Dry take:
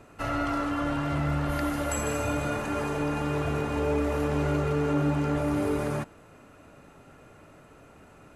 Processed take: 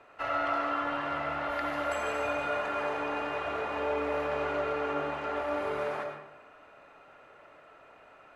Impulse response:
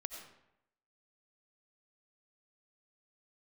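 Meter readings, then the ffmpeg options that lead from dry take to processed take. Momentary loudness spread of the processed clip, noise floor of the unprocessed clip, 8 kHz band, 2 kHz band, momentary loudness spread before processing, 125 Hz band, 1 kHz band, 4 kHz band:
3 LU, -53 dBFS, under -10 dB, +1.0 dB, 4 LU, -20.0 dB, +1.0 dB, -1.5 dB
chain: -filter_complex "[0:a]acrossover=split=470 4000:gain=0.112 1 0.112[s0][s1][s2];[s0][s1][s2]amix=inputs=3:normalize=0[s3];[1:a]atrim=start_sample=2205[s4];[s3][s4]afir=irnorm=-1:irlink=0,volume=1.5"

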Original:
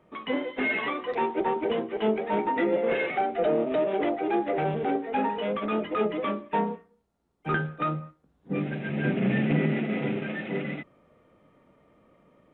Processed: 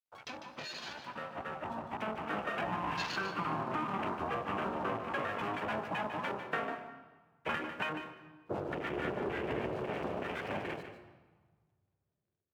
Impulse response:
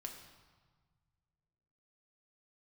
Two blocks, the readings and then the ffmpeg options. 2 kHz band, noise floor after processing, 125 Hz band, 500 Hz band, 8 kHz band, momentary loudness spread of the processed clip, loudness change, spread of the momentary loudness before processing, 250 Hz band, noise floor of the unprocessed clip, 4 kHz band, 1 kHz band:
-6.0 dB, -83 dBFS, -12.5 dB, -11.5 dB, no reading, 9 LU, -9.5 dB, 7 LU, -13.0 dB, -68 dBFS, -3.5 dB, -6.5 dB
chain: -filter_complex "[0:a]aeval=exprs='abs(val(0))':c=same,highshelf=f=3300:g=6.5,acompressor=threshold=0.02:ratio=4,highpass=130,aeval=exprs='sgn(val(0))*max(abs(val(0))-0.00119,0)':c=same,adynamicequalizer=threshold=0.00141:dfrequency=2100:dqfactor=3.4:tfrequency=2100:tqfactor=3.4:attack=5:release=100:ratio=0.375:range=2.5:mode=cutabove:tftype=bell,afwtdn=0.00562,dynaudnorm=f=390:g=9:m=2.82,asplit=2[s0][s1];[1:a]atrim=start_sample=2205,adelay=149[s2];[s1][s2]afir=irnorm=-1:irlink=0,volume=0.596[s3];[s0][s3]amix=inputs=2:normalize=0,volume=0.668"

